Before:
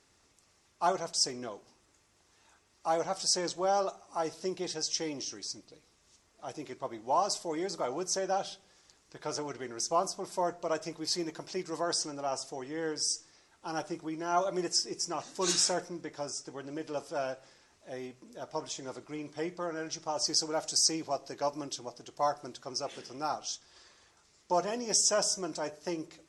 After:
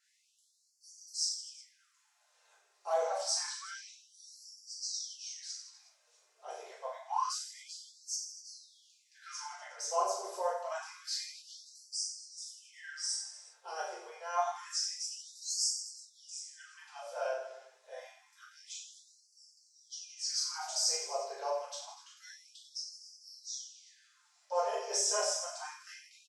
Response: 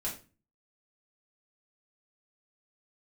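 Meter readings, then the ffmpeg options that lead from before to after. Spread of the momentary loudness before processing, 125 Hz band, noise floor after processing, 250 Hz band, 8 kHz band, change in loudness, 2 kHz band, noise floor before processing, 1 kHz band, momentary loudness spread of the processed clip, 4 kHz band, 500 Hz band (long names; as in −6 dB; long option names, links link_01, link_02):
13 LU, below −40 dB, −72 dBFS, below −25 dB, −3.0 dB, −3.5 dB, −4.0 dB, −68 dBFS, −5.0 dB, 19 LU, −4.0 dB, −6.0 dB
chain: -filter_complex "[0:a]aecho=1:1:40|92|159.6|247.5|361.7:0.631|0.398|0.251|0.158|0.1[link_01];[1:a]atrim=start_sample=2205[link_02];[link_01][link_02]afir=irnorm=-1:irlink=0,afftfilt=real='re*gte(b*sr/1024,350*pow(4500/350,0.5+0.5*sin(2*PI*0.27*pts/sr)))':imag='im*gte(b*sr/1024,350*pow(4500/350,0.5+0.5*sin(2*PI*0.27*pts/sr)))':win_size=1024:overlap=0.75,volume=-7dB"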